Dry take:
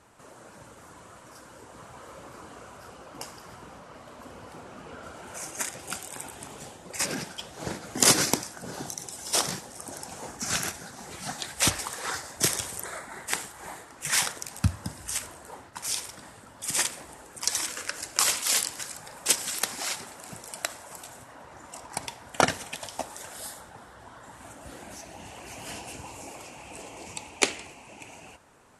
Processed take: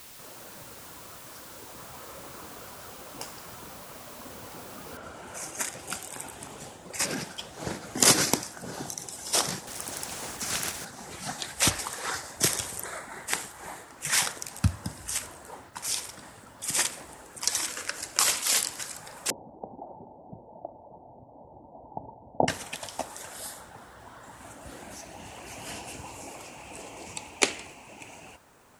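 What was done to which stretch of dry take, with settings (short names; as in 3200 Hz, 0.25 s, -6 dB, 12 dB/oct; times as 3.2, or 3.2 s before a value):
4.97 noise floor step -48 dB -69 dB
9.67–10.85 spectral compressor 2:1
19.3–22.48 Chebyshev low-pass 890 Hz, order 6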